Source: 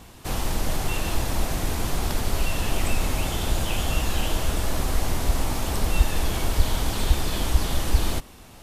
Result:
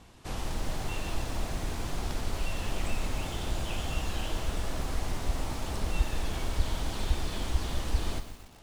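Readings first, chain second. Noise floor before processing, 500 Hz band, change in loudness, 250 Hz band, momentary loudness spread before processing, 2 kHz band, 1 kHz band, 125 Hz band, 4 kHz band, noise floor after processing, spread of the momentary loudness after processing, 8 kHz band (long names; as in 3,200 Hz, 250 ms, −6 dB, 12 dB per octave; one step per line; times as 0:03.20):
−46 dBFS, −7.5 dB, −8.0 dB, −7.5 dB, 3 LU, −8.0 dB, −7.5 dB, −7.5 dB, −8.0 dB, −50 dBFS, 3 LU, −10.5 dB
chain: Bessel low-pass filter 7,900 Hz, order 2
feedback echo at a low word length 123 ms, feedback 55%, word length 6 bits, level −11 dB
level −8 dB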